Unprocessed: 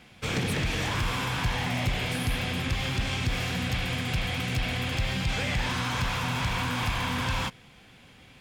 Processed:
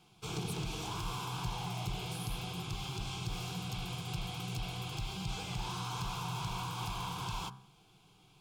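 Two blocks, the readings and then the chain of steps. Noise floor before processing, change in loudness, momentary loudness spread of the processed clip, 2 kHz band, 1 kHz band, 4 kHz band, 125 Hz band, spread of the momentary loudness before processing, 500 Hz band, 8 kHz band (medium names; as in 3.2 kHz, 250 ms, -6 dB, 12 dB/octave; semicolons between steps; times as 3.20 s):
-54 dBFS, -10.5 dB, 2 LU, -16.5 dB, -7.5 dB, -9.5 dB, -9.5 dB, 1 LU, -11.5 dB, -6.5 dB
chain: static phaser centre 370 Hz, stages 8; de-hum 65.65 Hz, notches 28; trim -6 dB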